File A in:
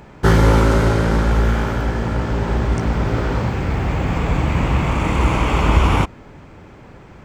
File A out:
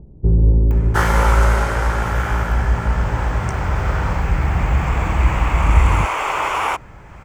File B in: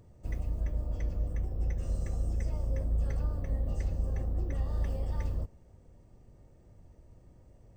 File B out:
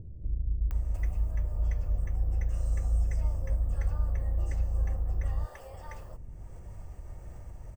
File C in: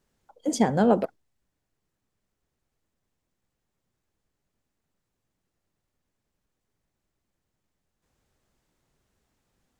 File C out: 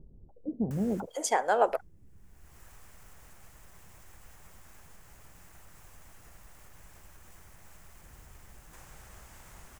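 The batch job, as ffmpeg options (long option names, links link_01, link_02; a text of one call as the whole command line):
ffmpeg -i in.wav -filter_complex "[0:a]acompressor=mode=upward:threshold=-32dB:ratio=2.5,equalizer=frequency=125:width_type=o:width=1:gain=-5,equalizer=frequency=250:width_type=o:width=1:gain=-10,equalizer=frequency=500:width_type=o:width=1:gain=-4,equalizer=frequency=4000:width_type=o:width=1:gain=-9,acrossover=split=380[link_01][link_02];[link_02]adelay=710[link_03];[link_01][link_03]amix=inputs=2:normalize=0,volume=4dB" out.wav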